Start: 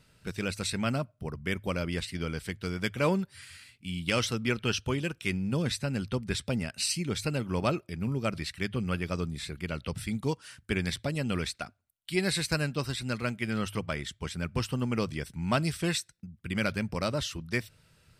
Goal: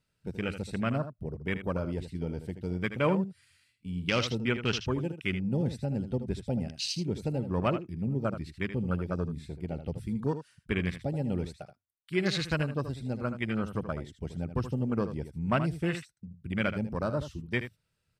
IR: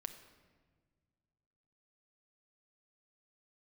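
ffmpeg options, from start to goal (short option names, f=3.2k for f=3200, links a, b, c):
-af "afwtdn=0.02,aecho=1:1:78:0.299"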